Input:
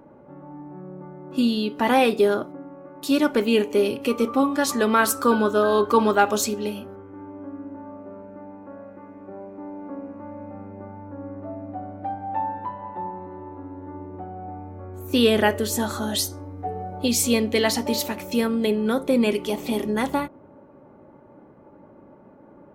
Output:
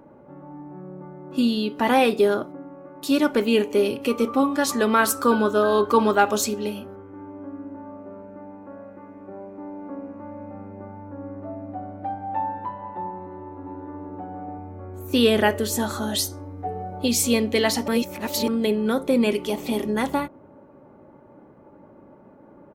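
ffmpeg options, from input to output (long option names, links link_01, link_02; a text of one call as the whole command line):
ffmpeg -i in.wav -filter_complex "[0:a]asplit=2[link_01][link_02];[link_02]afade=type=in:start_time=13.19:duration=0.01,afade=type=out:start_time=14.1:duration=0.01,aecho=0:1:470|940|1410:0.707946|0.106192|0.0159288[link_03];[link_01][link_03]amix=inputs=2:normalize=0,asplit=3[link_04][link_05][link_06];[link_04]atrim=end=17.882[link_07];[link_05]atrim=start=17.878:end=18.482,asetpts=PTS-STARTPTS,areverse[link_08];[link_06]atrim=start=18.478[link_09];[link_07][link_08]acrossfade=duration=0.004:curve1=hsin:curve2=hsin[link_10];[link_10][link_09]acrossfade=duration=0.004:curve1=hsin:curve2=hsin" out.wav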